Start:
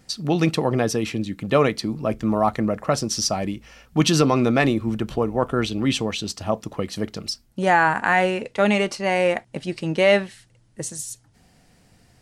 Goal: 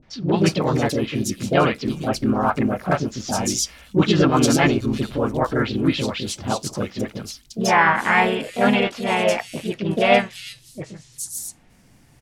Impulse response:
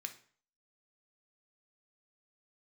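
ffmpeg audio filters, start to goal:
-filter_complex "[0:a]acrossover=split=530|3800[link_01][link_02][link_03];[link_02]adelay=30[link_04];[link_03]adelay=370[link_05];[link_01][link_04][link_05]amix=inputs=3:normalize=0,asplit=4[link_06][link_07][link_08][link_09];[link_07]asetrate=29433,aresample=44100,atempo=1.49831,volume=-15dB[link_10];[link_08]asetrate=52444,aresample=44100,atempo=0.840896,volume=-2dB[link_11];[link_09]asetrate=55563,aresample=44100,atempo=0.793701,volume=-9dB[link_12];[link_06][link_10][link_11][link_12]amix=inputs=4:normalize=0"

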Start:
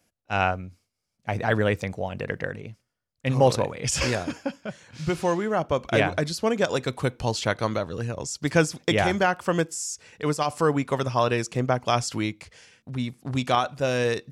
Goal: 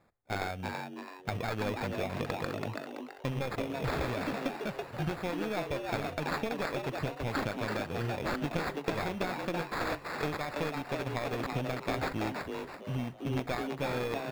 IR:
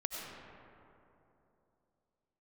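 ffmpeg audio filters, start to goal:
-filter_complex "[0:a]aeval=exprs='0.447*(cos(1*acos(clip(val(0)/0.447,-1,1)))-cos(1*PI/2))+0.2*(cos(2*acos(clip(val(0)/0.447,-1,1)))-cos(2*PI/2))':channel_layout=same,acrossover=split=4600[link_01][link_02];[link_01]acompressor=threshold=-33dB:ratio=10[link_03];[link_02]alimiter=level_in=2.5dB:limit=-24dB:level=0:latency=1:release=419,volume=-2.5dB[link_04];[link_03][link_04]amix=inputs=2:normalize=0,equalizer=frequency=1000:width=4:gain=-5.5,acrusher=samples=15:mix=1:aa=0.000001,asplit=2[link_05][link_06];[link_06]adynamicsmooth=sensitivity=6.5:basefreq=2700,volume=2dB[link_07];[link_05][link_07]amix=inputs=2:normalize=0,equalizer=frequency=2700:width=1.2:gain=4,asplit=6[link_08][link_09][link_10][link_11][link_12][link_13];[link_09]adelay=331,afreqshift=140,volume=-4dB[link_14];[link_10]adelay=662,afreqshift=280,volume=-12.9dB[link_15];[link_11]adelay=993,afreqshift=420,volume=-21.7dB[link_16];[link_12]adelay=1324,afreqshift=560,volume=-30.6dB[link_17];[link_13]adelay=1655,afreqshift=700,volume=-39.5dB[link_18];[link_08][link_14][link_15][link_16][link_17][link_18]amix=inputs=6:normalize=0[link_19];[1:a]atrim=start_sample=2205,atrim=end_sample=3087[link_20];[link_19][link_20]afir=irnorm=-1:irlink=0,volume=-3.5dB"

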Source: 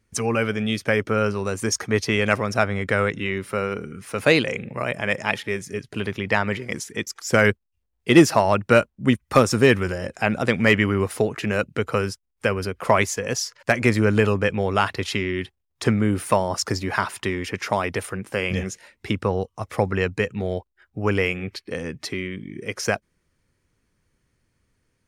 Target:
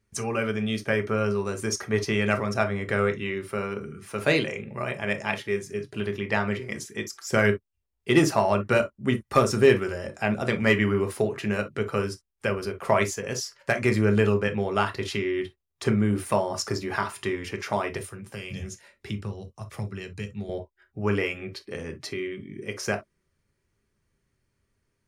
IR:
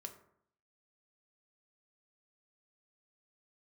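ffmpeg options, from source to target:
-filter_complex "[0:a]asettb=1/sr,asplit=3[link_01][link_02][link_03];[link_01]atrim=end=17.974[link_04];[link_02]atrim=start=17.97:end=20.49,asetpts=PTS-STARTPTS,afade=type=in:duration=0.004:curve=qsin,afade=type=out:start_time=2.516:duration=0.004:curve=qsin,acrossover=split=200|3000[link_05][link_06][link_07];[link_06]acompressor=threshold=-37dB:ratio=6[link_08];[link_05][link_08][link_07]amix=inputs=3:normalize=0[link_09];[link_03]atrim=start=20.486[link_10];[link_04][link_09]acrossfade=duration=0.004:curve1=hsin:curve2=qsin[link_11];[link_11][link_10]acrossfade=duration=0.004:curve1=qsin:curve2=hsin[link_12];[1:a]atrim=start_sample=2205,atrim=end_sample=3087[link_13];[link_12][link_13]afir=irnorm=-1:irlink=0"

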